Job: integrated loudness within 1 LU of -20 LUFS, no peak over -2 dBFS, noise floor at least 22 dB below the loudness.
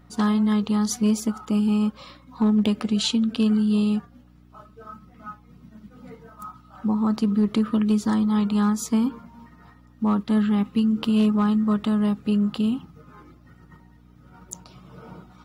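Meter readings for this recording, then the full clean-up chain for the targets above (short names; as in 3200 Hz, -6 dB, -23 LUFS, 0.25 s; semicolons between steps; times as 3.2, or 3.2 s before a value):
clipped 0.3%; flat tops at -14.0 dBFS; hum 60 Hz; harmonics up to 300 Hz; hum level -52 dBFS; loudness -22.5 LUFS; peak -14.0 dBFS; loudness target -20.0 LUFS
-> clip repair -14 dBFS; de-hum 60 Hz, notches 5; gain +2.5 dB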